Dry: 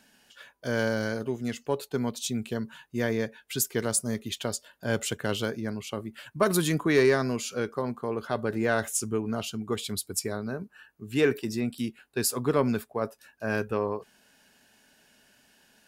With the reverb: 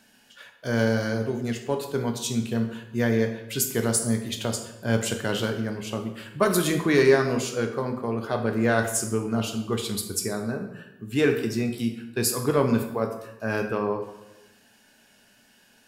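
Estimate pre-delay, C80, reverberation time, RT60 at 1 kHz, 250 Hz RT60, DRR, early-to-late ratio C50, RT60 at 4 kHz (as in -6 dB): 8 ms, 10.0 dB, 0.95 s, 0.90 s, 1.0 s, 4.0 dB, 8.0 dB, 0.70 s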